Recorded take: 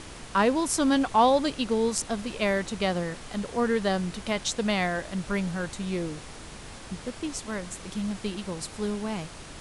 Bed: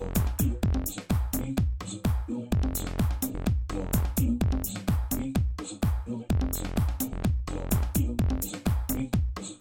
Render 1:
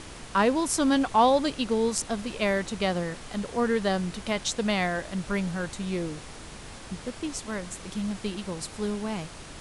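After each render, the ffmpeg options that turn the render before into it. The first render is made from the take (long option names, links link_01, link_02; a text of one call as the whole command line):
ffmpeg -i in.wav -af anull out.wav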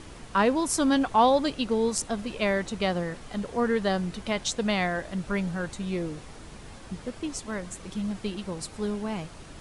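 ffmpeg -i in.wav -af "afftdn=noise_reduction=6:noise_floor=-44" out.wav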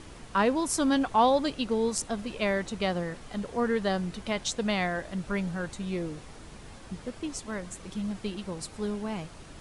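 ffmpeg -i in.wav -af "volume=-2dB" out.wav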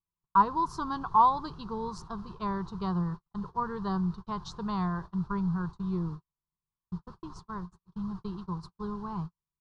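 ffmpeg -i in.wav -af "agate=range=-50dB:threshold=-37dB:ratio=16:detection=peak,firequalizer=gain_entry='entry(110,0);entry(170,7);entry(250,-16);entry(370,-3);entry(560,-21);entry(1000,9);entry(2100,-26);entry(4300,-8);entry(8100,-27)':delay=0.05:min_phase=1" out.wav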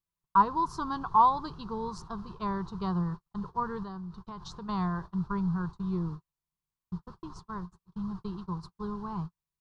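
ffmpeg -i in.wav -filter_complex "[0:a]asettb=1/sr,asplit=3[link_01][link_02][link_03];[link_01]atrim=end=3.834[link_04];[link_02]atrim=start=3.83:end=4.69,asetpts=PTS-STARTPTS,afade=type=in:duration=0.004:curve=qsin,afade=type=out:start_time=0.856:duration=0.004:curve=qsin,acompressor=threshold=-38dB:ratio=6:attack=3.2:release=140:knee=1:detection=peak[link_05];[link_03]atrim=start=4.686[link_06];[link_04][link_05]acrossfade=duration=0.004:curve1=hsin:curve2=qsin[link_07];[link_07][link_06]acrossfade=duration=0.004:curve1=qsin:curve2=hsin" out.wav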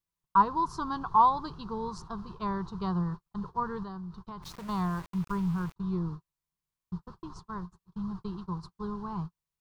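ffmpeg -i in.wav -filter_complex "[0:a]asplit=3[link_01][link_02][link_03];[link_01]afade=type=out:start_time=4.42:duration=0.02[link_04];[link_02]aeval=exprs='val(0)*gte(abs(val(0)),0.00631)':channel_layout=same,afade=type=in:start_time=4.42:duration=0.02,afade=type=out:start_time=5.76:duration=0.02[link_05];[link_03]afade=type=in:start_time=5.76:duration=0.02[link_06];[link_04][link_05][link_06]amix=inputs=3:normalize=0" out.wav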